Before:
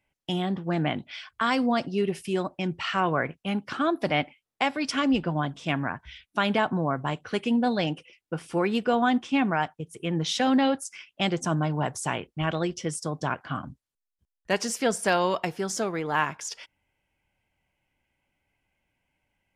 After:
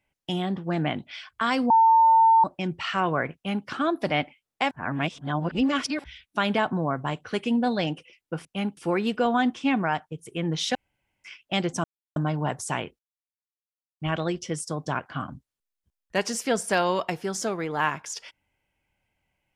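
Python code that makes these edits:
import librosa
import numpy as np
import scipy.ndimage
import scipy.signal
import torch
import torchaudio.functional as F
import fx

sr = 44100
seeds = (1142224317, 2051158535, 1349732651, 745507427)

y = fx.edit(x, sr, fx.bleep(start_s=1.7, length_s=0.74, hz=901.0, db=-13.5),
    fx.duplicate(start_s=3.35, length_s=0.32, to_s=8.45),
    fx.reverse_span(start_s=4.71, length_s=1.33),
    fx.room_tone_fill(start_s=10.43, length_s=0.49),
    fx.insert_silence(at_s=11.52, length_s=0.32),
    fx.insert_silence(at_s=12.35, length_s=1.01), tone=tone)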